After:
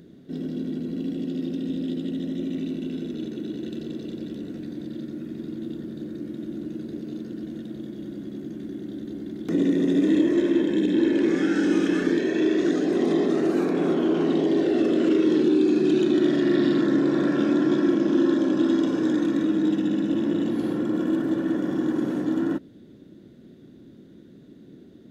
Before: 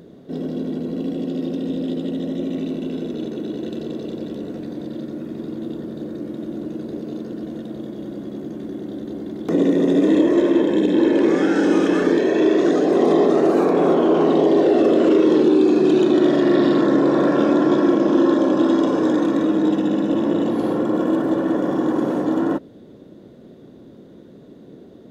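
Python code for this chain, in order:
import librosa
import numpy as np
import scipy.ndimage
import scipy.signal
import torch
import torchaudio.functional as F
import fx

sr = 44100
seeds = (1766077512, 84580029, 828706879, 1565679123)

y = fx.band_shelf(x, sr, hz=720.0, db=-9.0, octaves=1.7)
y = F.gain(torch.from_numpy(y), -3.5).numpy()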